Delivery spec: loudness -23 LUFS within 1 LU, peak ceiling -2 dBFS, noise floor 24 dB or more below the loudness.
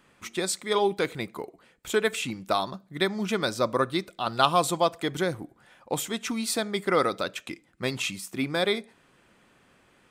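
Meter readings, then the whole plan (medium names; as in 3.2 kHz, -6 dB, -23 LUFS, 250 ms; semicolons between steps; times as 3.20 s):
loudness -27.5 LUFS; peak level -4.0 dBFS; loudness target -23.0 LUFS
-> trim +4.5 dB; peak limiter -2 dBFS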